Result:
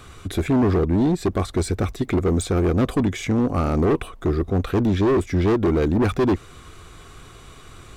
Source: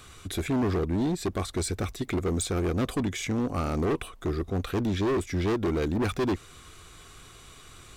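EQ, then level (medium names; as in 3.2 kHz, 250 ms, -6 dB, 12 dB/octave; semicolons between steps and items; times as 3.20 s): treble shelf 2.1 kHz -8.5 dB; +8.0 dB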